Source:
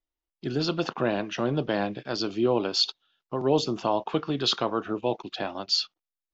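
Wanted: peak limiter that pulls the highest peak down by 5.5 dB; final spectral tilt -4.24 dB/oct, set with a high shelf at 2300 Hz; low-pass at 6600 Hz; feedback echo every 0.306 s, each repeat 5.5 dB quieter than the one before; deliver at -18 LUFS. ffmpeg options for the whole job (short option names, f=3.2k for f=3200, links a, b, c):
-af "lowpass=6.6k,highshelf=f=2.3k:g=-5.5,alimiter=limit=-17.5dB:level=0:latency=1,aecho=1:1:306|612|918|1224|1530|1836|2142:0.531|0.281|0.149|0.079|0.0419|0.0222|0.0118,volume=11dB"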